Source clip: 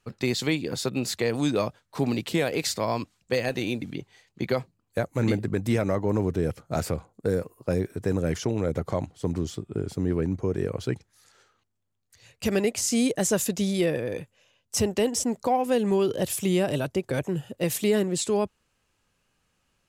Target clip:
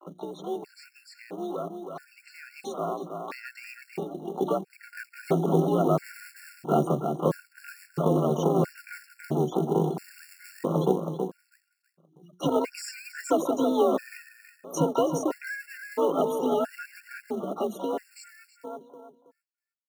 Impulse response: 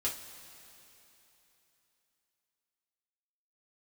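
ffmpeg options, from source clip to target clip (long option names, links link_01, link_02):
-filter_complex "[0:a]acompressor=threshold=-33dB:ratio=2.5,equalizer=frequency=100:width_type=o:width=0.33:gain=10,equalizer=frequency=315:width_type=o:width=0.33:gain=11,equalizer=frequency=630:width_type=o:width=0.33:gain=8,equalizer=frequency=1250:width_type=o:width=0.33:gain=3,equalizer=frequency=12500:width_type=o:width=0.33:gain=3,afftfilt=real='re*gte(hypot(re,im),0.00891)':imag='im*gte(hypot(re,im),0.00891)':win_size=1024:overlap=0.75,afreqshift=62,bandreject=frequency=60:width_type=h:width=6,bandreject=frequency=120:width_type=h:width=6,bandreject=frequency=180:width_type=h:width=6,bandreject=frequency=240:width_type=h:width=6,bandreject=frequency=300:width_type=h:width=6,bandreject=frequency=360:width_type=h:width=6,asplit=2[link_01][link_02];[link_02]asetrate=88200,aresample=44100,atempo=0.5,volume=-8dB[link_03];[link_01][link_03]amix=inputs=2:normalize=0,dynaudnorm=framelen=800:gausssize=9:maxgain=14dB,aemphasis=mode=reproduction:type=50fm,asplit=2[link_04][link_05];[link_05]adelay=323,lowpass=frequency=2300:poles=1,volume=-5.5dB,asplit=2[link_06][link_07];[link_07]adelay=323,lowpass=frequency=2300:poles=1,volume=0.33,asplit=2[link_08][link_09];[link_09]adelay=323,lowpass=frequency=2300:poles=1,volume=0.33,asplit=2[link_10][link_11];[link_11]adelay=323,lowpass=frequency=2300:poles=1,volume=0.33[link_12];[link_04][link_06][link_08][link_10][link_12]amix=inputs=5:normalize=0,acrusher=bits=6:mode=log:mix=0:aa=0.000001,afftfilt=real='re*gt(sin(2*PI*0.75*pts/sr)*(1-2*mod(floor(b*sr/1024/1400),2)),0)':imag='im*gt(sin(2*PI*0.75*pts/sr)*(1-2*mod(floor(b*sr/1024/1400),2)),0)':win_size=1024:overlap=0.75,volume=-7.5dB"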